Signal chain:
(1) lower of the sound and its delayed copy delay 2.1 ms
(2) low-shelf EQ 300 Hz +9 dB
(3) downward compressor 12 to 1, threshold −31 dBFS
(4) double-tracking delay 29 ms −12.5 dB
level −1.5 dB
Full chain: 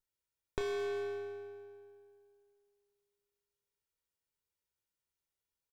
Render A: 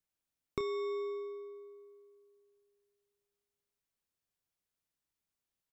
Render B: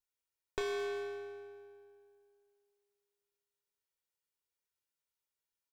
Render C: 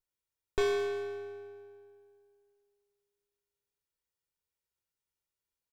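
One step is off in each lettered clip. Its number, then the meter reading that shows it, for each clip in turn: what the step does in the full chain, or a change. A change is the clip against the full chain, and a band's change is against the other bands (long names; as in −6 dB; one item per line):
1, 2 kHz band −6.5 dB
2, 125 Hz band −8.0 dB
3, change in crest factor −2.0 dB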